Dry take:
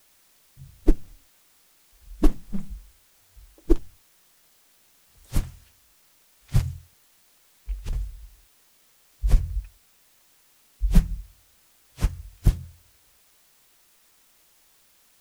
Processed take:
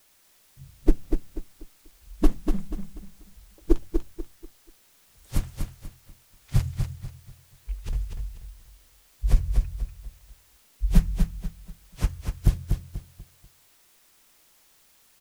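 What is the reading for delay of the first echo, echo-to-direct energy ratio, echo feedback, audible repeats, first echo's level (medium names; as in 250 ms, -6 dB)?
243 ms, -5.0 dB, 32%, 3, -5.5 dB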